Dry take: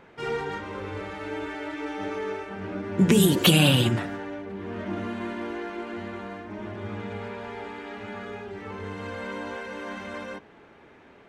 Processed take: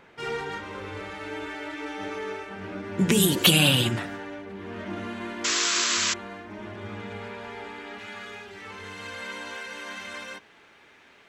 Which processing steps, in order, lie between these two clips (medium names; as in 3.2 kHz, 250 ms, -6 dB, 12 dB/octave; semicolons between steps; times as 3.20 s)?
tilt shelf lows -3.5 dB, about 1.4 kHz, from 7.98 s lows -9.5 dB; 5.44–6.14 s: painted sound noise 950–7800 Hz -25 dBFS